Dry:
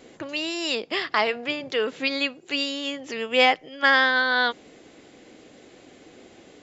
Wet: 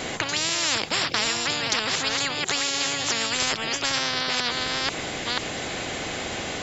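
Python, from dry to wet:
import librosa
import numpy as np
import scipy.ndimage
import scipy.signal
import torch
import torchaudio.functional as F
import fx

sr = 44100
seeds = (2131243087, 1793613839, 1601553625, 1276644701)

y = fx.reverse_delay(x, sr, ms=489, wet_db=-9)
y = fx.spectral_comp(y, sr, ratio=10.0)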